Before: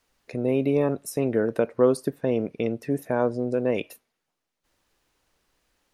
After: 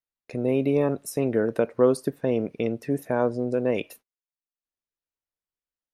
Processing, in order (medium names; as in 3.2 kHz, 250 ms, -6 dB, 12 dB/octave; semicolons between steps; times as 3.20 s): gate -49 dBFS, range -29 dB